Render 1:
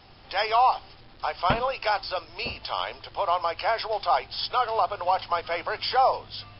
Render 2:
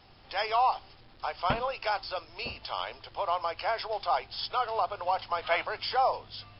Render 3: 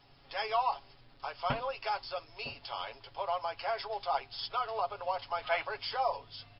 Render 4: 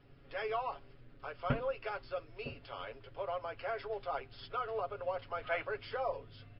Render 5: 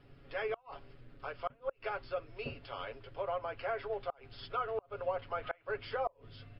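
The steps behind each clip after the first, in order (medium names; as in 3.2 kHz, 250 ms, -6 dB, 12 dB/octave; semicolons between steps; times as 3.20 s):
time-frequency box 5.42–5.65 s, 560–4300 Hz +8 dB; trim -5 dB
comb 7.2 ms, depth 67%; trim -6 dB
FFT filter 500 Hz 0 dB, 860 Hz -16 dB, 1.4 kHz -5 dB, 2.7 kHz -10 dB, 4.9 kHz -21 dB; trim +4 dB
inverted gate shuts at -26 dBFS, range -31 dB; low-pass that closes with the level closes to 3 kHz, closed at -35 dBFS; trim +2 dB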